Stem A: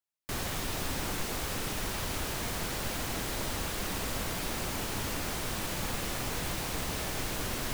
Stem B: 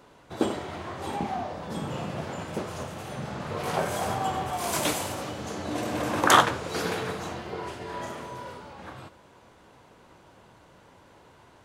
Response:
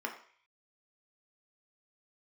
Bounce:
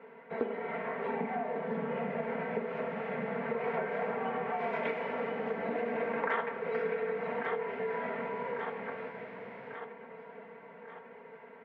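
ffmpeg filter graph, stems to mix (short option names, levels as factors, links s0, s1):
-filter_complex "[0:a]adelay=2000,volume=0.211[s0];[1:a]aecho=1:1:4.4:0.87,volume=0.708,asplit=3[s1][s2][s3];[s2]volume=0.335[s4];[s3]volume=0.211[s5];[2:a]atrim=start_sample=2205[s6];[s4][s6]afir=irnorm=-1:irlink=0[s7];[s5]aecho=0:1:1145|2290|3435|4580|5725|6870|8015:1|0.47|0.221|0.104|0.0488|0.0229|0.0108[s8];[s0][s1][s7][s8]amix=inputs=4:normalize=0,highpass=f=150:w=0.5412,highpass=f=150:w=1.3066,equalizer=f=320:t=q:w=4:g=-9,equalizer=f=460:t=q:w=4:g=8,equalizer=f=1200:t=q:w=4:g=-6,equalizer=f=2100:t=q:w=4:g=8,lowpass=f=2200:w=0.5412,lowpass=f=2200:w=1.3066,acompressor=threshold=0.0282:ratio=5"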